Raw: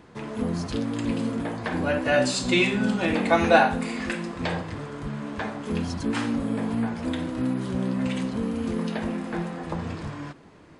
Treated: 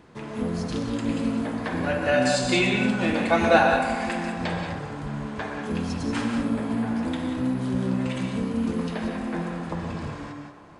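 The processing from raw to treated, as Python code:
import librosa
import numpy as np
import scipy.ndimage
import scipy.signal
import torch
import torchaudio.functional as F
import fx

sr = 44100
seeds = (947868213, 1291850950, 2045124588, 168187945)

p1 = x + fx.echo_banded(x, sr, ms=121, feedback_pct=79, hz=870.0, wet_db=-8, dry=0)
p2 = fx.rev_gated(p1, sr, seeds[0], gate_ms=210, shape='rising', drr_db=4.0)
y = F.gain(torch.from_numpy(p2), -1.5).numpy()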